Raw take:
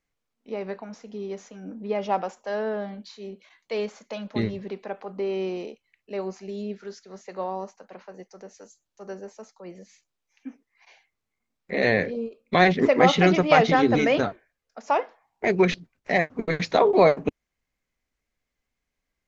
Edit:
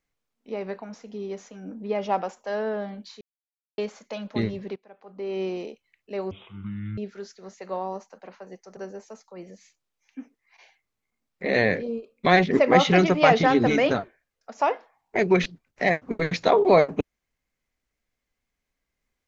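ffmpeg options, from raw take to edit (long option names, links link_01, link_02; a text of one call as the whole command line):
ffmpeg -i in.wav -filter_complex "[0:a]asplit=7[link_01][link_02][link_03][link_04][link_05][link_06][link_07];[link_01]atrim=end=3.21,asetpts=PTS-STARTPTS,afade=type=out:start_time=3.206:duration=0.004:curve=hsin[link_08];[link_02]atrim=start=3.21:end=3.78,asetpts=PTS-STARTPTS,volume=0[link_09];[link_03]atrim=start=3.78:end=4.76,asetpts=PTS-STARTPTS,afade=type=in:duration=0.004:curve=hsin,afade=type=out:start_time=0.976:duration=0.004:curve=hsin:silence=0.105925[link_10];[link_04]atrim=start=4.76:end=6.314,asetpts=PTS-STARTPTS,afade=type=in:duration=0.65:curve=qua:silence=0.105925[link_11];[link_05]atrim=start=6.31:end=6.65,asetpts=PTS-STARTPTS,asetrate=22491,aresample=44100[link_12];[link_06]atrim=start=6.646:end=8.442[link_13];[link_07]atrim=start=9.048[link_14];[link_08][link_09][link_10][link_11]concat=n=4:v=0:a=1[link_15];[link_15][link_12]acrossfade=duration=0.004:curve1=hsin:curve2=hsin[link_16];[link_16][link_13]acrossfade=duration=0.004:curve1=hsin:curve2=hsin[link_17];[link_17][link_14]acrossfade=duration=0.004:curve1=hsin:curve2=hsin" out.wav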